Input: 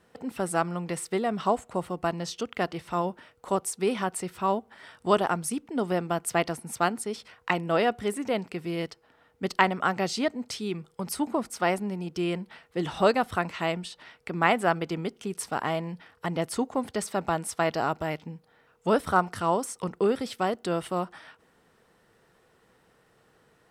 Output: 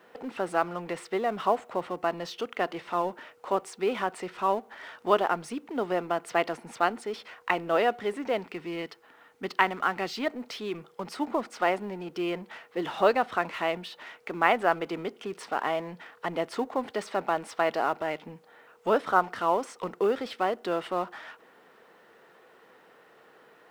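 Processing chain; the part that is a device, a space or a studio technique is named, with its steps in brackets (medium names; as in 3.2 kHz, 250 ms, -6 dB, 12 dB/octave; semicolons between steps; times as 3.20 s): phone line with mismatched companding (band-pass 330–3200 Hz; companding laws mixed up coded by mu); 8.43–10.27 s: peaking EQ 580 Hz -6 dB 0.88 oct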